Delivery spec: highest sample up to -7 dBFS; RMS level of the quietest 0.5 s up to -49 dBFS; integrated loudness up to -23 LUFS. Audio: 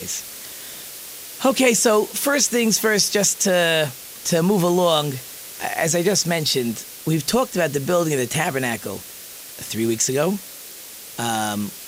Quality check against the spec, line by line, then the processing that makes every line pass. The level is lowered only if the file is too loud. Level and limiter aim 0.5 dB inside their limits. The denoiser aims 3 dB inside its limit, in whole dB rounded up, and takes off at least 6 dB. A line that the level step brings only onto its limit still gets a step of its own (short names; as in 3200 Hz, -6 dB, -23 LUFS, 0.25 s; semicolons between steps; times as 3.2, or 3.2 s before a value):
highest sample -3.5 dBFS: fail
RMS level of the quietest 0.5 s -38 dBFS: fail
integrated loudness -20.0 LUFS: fail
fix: denoiser 11 dB, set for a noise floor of -38 dBFS; gain -3.5 dB; limiter -7.5 dBFS